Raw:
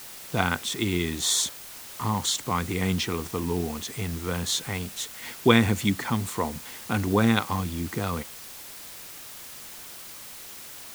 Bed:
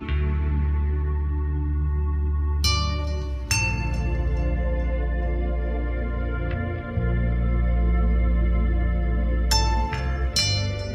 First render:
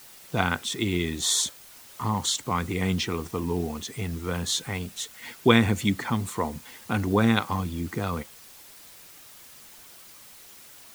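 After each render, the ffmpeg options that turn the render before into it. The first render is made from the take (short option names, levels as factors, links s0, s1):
-af "afftdn=nr=7:nf=-42"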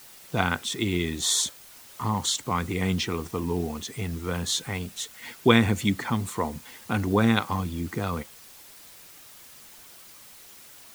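-af anull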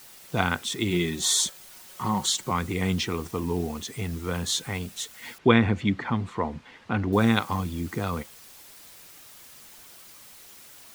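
-filter_complex "[0:a]asettb=1/sr,asplit=3[s0][s1][s2];[s0]atrim=end=0.904[s3];[s1]atrim=start=0.9:end=2.51,asetpts=PTS-STARTPTS,afade=t=in:d=0.004:c=qsin,afade=t=out:st=1.606:d=0.004:c=qsin,aecho=1:1:5.4:0.54,atrim=end_sample=71001[s4];[s2]atrim=start=2.506[s5];[s3][s4]acrossfade=d=0.004:c1=hsin:c2=qsin[s6];[s6][s5]acrossfade=d=0.004:c1=qsin:c2=hsin,asettb=1/sr,asplit=3[s7][s8][s9];[s7]atrim=end=5.384[s10];[s8]atrim=start=5.38:end=7.13,asetpts=PTS-STARTPTS,afade=t=in:d=0.004:c=qsin,afade=t=out:st=1.746:d=0.004:c=qsin,lowpass=2900[s11];[s9]atrim=start=7.126[s12];[s10][s11]acrossfade=d=0.004:c1=hsin:c2=qsin[s13];[s13][s12]acrossfade=d=0.004:c1=qsin:c2=hsin"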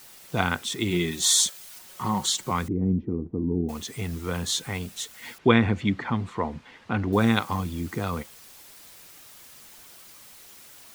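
-filter_complex "[0:a]asettb=1/sr,asplit=3[s0][s1][s2];[s0]atrim=end=1.114[s3];[s1]atrim=start=1.11:end=1.79,asetpts=PTS-STARTPTS,afade=t=in:d=0.004:c=qsin,afade=t=out:st=0.676:d=0.004:c=qsin,tiltshelf=f=1500:g=-3.5[s4];[s2]atrim=start=1.786[s5];[s3][s4]acrossfade=d=0.004:c1=hsin:c2=qsin[s6];[s6][s5]acrossfade=d=0.004:c1=qsin:c2=hsin,asettb=1/sr,asplit=3[s7][s8][s9];[s7]atrim=end=2.684[s10];[s8]atrim=start=2.68:end=3.69,asetpts=PTS-STARTPTS,afade=t=in:d=0.004:c=qsin,afade=t=out:st=1.006:d=0.004:c=qsin,lowpass=f=300:t=q:w=1.7[s11];[s9]atrim=start=3.686[s12];[s10][s11]acrossfade=d=0.004:c1=hsin:c2=qsin[s13];[s13][s12]acrossfade=d=0.004:c1=qsin:c2=hsin"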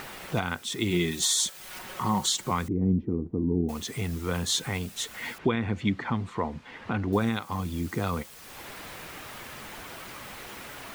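-filter_complex "[0:a]acrossover=split=2800[s0][s1];[s0]acompressor=mode=upward:threshold=0.0355:ratio=2.5[s2];[s2][s1]amix=inputs=2:normalize=0,alimiter=limit=0.2:level=0:latency=1:release=365"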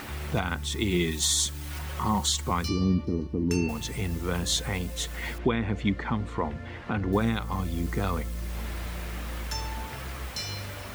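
-filter_complex "[1:a]volume=0.224[s0];[0:a][s0]amix=inputs=2:normalize=0"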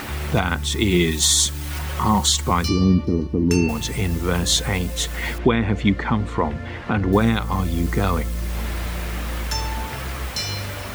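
-af "volume=2.51"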